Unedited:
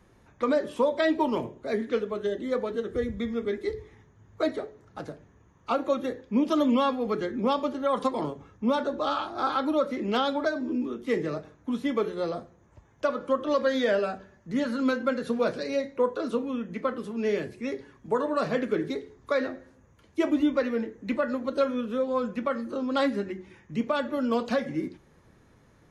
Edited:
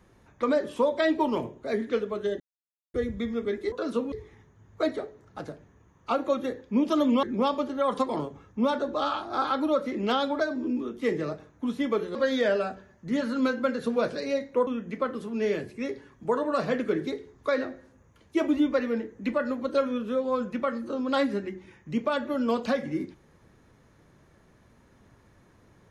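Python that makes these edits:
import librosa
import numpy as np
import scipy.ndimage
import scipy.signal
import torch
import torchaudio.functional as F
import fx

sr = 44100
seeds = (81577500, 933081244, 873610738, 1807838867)

y = fx.edit(x, sr, fx.silence(start_s=2.4, length_s=0.54),
    fx.cut(start_s=6.83, length_s=0.45),
    fx.cut(start_s=12.2, length_s=1.38),
    fx.move(start_s=16.1, length_s=0.4, to_s=3.72), tone=tone)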